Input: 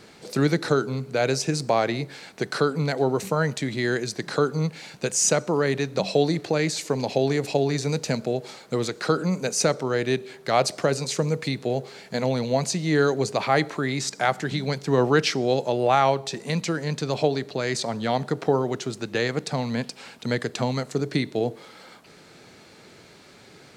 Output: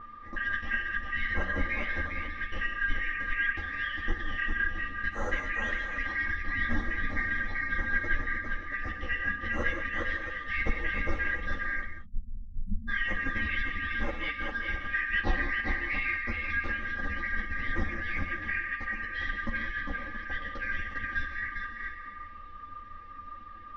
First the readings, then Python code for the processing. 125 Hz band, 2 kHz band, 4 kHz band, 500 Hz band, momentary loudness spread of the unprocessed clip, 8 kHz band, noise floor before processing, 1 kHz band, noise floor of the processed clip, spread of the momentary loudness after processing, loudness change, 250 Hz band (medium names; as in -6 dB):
-13.5 dB, +4.0 dB, -13.0 dB, -21.5 dB, 7 LU, under -30 dB, -50 dBFS, -11.0 dB, -44 dBFS, 10 LU, -7.0 dB, -15.0 dB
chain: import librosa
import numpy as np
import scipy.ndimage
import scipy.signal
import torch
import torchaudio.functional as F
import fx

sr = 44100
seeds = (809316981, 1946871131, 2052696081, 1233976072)

p1 = fx.band_shuffle(x, sr, order='4123')
p2 = p1 + 0.82 * np.pad(p1, (int(3.7 * sr / 1000.0), 0))[:len(p1)]
p3 = p2 + fx.echo_multitap(p2, sr, ms=(168, 403, 675), db=(-15.5, -4.5, -12.0), dry=0)
p4 = p3 + 10.0 ** (-30.0 / 20.0) * np.sin(2.0 * np.pi * 1200.0 * np.arange(len(p3)) / sr)
p5 = fx.tilt_eq(p4, sr, slope=-4.5)
p6 = fx.notch(p5, sr, hz=7400.0, q=9.9)
p7 = fx.spec_erase(p6, sr, start_s=11.84, length_s=1.04, low_hz=250.0, high_hz=8700.0)
p8 = fx.air_absorb(p7, sr, metres=240.0)
p9 = fx.rev_gated(p8, sr, seeds[0], gate_ms=220, shape='flat', drr_db=4.5)
p10 = fx.ensemble(p9, sr)
y = p10 * 10.0 ** (-6.0 / 20.0)